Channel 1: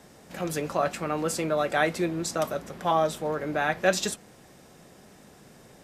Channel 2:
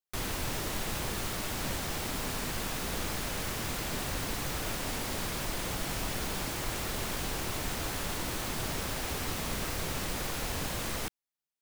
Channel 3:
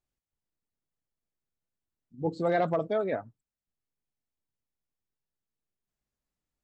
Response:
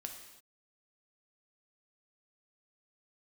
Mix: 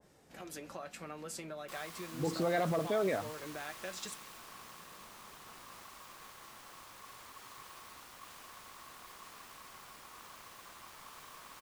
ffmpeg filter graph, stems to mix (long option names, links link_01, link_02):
-filter_complex "[0:a]acompressor=threshold=-30dB:ratio=6,flanger=delay=1.9:depth=3.6:regen=-67:speed=0.31:shape=triangular,volume=-8dB[link_01];[1:a]aeval=exprs='val(0)*sin(2*PI*1100*n/s)':channel_layout=same,adelay=1550,volume=-16.5dB[link_02];[2:a]volume=2dB[link_03];[link_01][link_03]amix=inputs=2:normalize=0,alimiter=level_in=0.5dB:limit=-24dB:level=0:latency=1,volume=-0.5dB,volume=0dB[link_04];[link_02][link_04]amix=inputs=2:normalize=0,adynamicequalizer=threshold=0.00224:dfrequency=1600:dqfactor=0.7:tfrequency=1600:tqfactor=0.7:attack=5:release=100:ratio=0.375:range=3:mode=boostabove:tftype=highshelf"